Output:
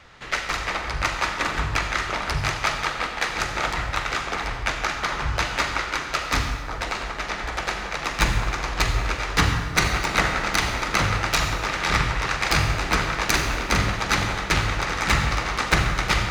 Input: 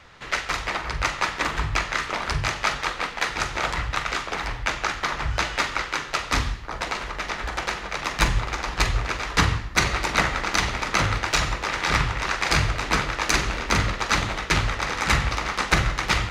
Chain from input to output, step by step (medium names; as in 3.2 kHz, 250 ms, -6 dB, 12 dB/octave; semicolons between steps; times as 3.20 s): tracing distortion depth 0.038 ms; band-stop 1 kHz, Q 25; reverberation RT60 2.0 s, pre-delay 57 ms, DRR 6.5 dB